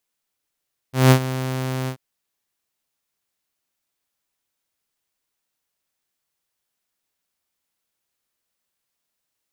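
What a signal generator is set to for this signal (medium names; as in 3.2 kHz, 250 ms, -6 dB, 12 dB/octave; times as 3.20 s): ADSR saw 130 Hz, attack 177 ms, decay 81 ms, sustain -15 dB, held 0.95 s, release 85 ms -5.5 dBFS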